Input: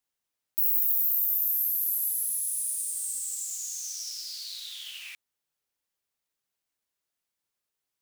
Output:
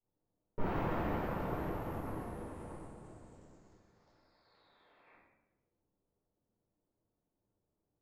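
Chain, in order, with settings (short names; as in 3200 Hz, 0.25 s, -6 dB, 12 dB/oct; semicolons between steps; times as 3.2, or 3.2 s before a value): Wiener smoothing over 15 samples; added harmonics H 2 -12 dB, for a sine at -12 dBFS; compressor 2.5:1, threshold -30 dBFS, peak gain reduction 6 dB; low-pass opened by the level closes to 520 Hz, open at -17 dBFS; shoebox room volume 480 m³, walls mixed, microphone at 4.5 m; gain +3.5 dB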